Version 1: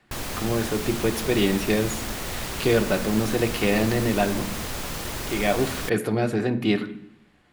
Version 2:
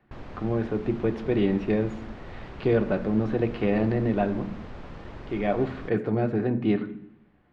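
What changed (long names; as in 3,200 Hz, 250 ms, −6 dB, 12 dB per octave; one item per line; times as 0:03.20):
background −6.0 dB
master: add head-to-tape spacing loss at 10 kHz 42 dB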